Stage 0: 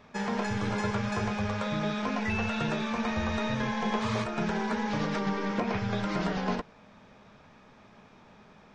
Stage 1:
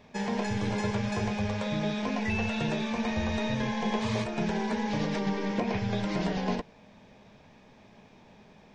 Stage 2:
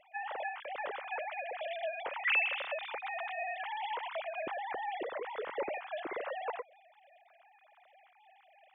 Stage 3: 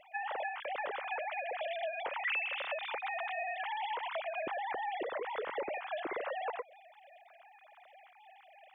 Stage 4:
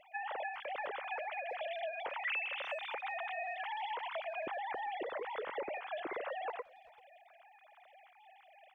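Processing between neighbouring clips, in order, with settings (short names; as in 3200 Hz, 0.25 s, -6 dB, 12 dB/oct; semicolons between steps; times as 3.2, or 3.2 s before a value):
bell 1300 Hz -11.5 dB 0.47 oct; gain +1 dB
sine-wave speech; gain -8 dB
compressor 3:1, threshold -40 dBFS, peak gain reduction 11 dB; gain +4.5 dB
speakerphone echo 0.39 s, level -23 dB; gain -2.5 dB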